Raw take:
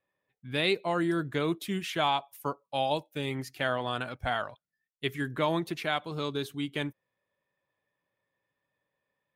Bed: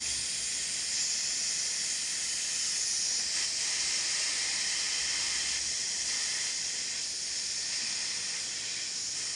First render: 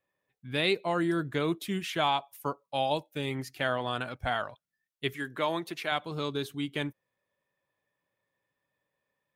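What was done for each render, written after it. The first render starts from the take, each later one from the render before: 5.13–5.92 s: high-pass 410 Hz 6 dB/octave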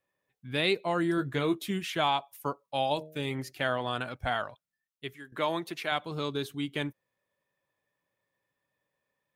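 1.16–1.71 s: doubling 15 ms -7 dB; 2.93–3.52 s: de-hum 77.87 Hz, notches 9; 4.39–5.32 s: fade out, to -14 dB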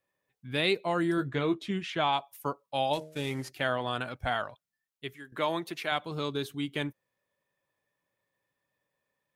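1.28–2.13 s: distance through air 93 m; 2.93–3.50 s: CVSD coder 64 kbps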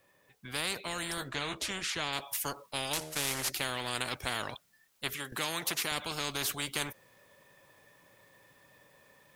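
gain riding 0.5 s; spectrum-flattening compressor 4:1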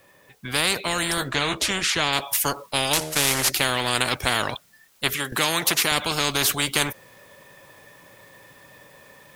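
trim +12 dB

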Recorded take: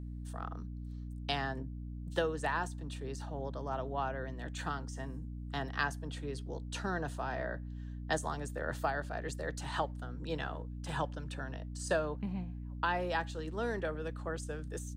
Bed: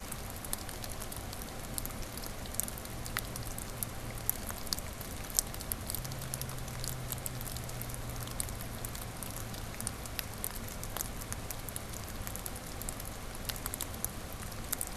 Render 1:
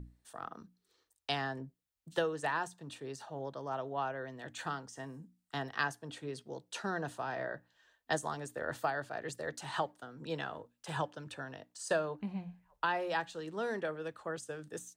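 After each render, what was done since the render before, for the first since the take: hum notches 60/120/180/240/300 Hz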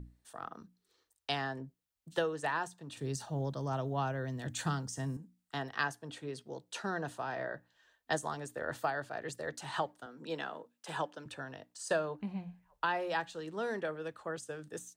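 2.97–5.17 s: tone controls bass +15 dB, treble +10 dB; 10.06–11.26 s: high-pass 180 Hz 24 dB/octave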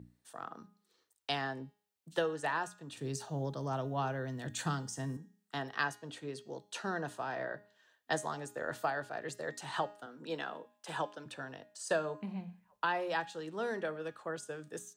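high-pass 120 Hz; de-hum 206.8 Hz, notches 39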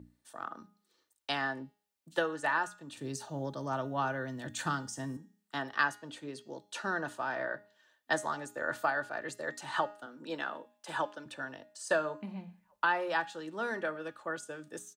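dynamic bell 1.4 kHz, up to +6 dB, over -48 dBFS, Q 1.3; comb 3.4 ms, depth 35%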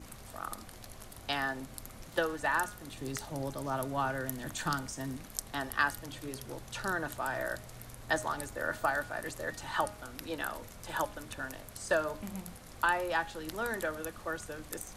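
add bed -8 dB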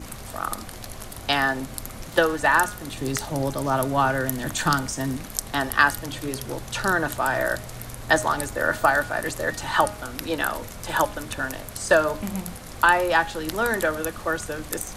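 trim +11.5 dB; peak limiter -3 dBFS, peak gain reduction 2 dB

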